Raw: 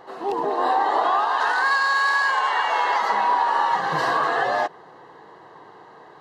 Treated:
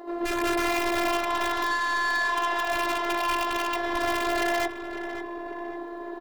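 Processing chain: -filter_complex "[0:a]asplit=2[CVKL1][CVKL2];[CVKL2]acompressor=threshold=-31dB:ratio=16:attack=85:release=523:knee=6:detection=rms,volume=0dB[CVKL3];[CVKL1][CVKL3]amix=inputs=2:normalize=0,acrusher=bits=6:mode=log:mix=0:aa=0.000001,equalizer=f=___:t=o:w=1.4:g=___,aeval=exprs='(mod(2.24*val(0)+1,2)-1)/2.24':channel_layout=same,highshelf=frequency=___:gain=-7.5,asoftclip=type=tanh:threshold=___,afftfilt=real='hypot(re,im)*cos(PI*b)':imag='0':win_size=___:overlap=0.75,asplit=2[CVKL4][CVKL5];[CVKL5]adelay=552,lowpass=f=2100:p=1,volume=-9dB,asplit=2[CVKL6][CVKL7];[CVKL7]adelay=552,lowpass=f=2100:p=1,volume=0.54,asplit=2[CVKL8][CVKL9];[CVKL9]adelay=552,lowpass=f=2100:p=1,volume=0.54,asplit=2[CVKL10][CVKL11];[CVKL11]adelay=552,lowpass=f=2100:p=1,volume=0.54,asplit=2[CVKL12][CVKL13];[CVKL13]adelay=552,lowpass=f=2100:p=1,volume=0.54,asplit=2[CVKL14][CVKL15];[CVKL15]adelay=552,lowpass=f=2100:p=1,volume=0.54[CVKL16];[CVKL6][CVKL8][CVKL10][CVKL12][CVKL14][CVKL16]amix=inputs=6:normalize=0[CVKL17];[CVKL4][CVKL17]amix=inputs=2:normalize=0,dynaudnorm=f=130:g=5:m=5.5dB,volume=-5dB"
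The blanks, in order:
420, 13.5, 3200, -19.5dB, 512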